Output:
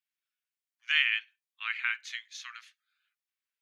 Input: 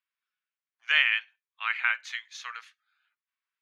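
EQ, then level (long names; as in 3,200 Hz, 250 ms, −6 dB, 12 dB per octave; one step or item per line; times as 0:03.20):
Bessel high-pass filter 2,300 Hz, order 2
0.0 dB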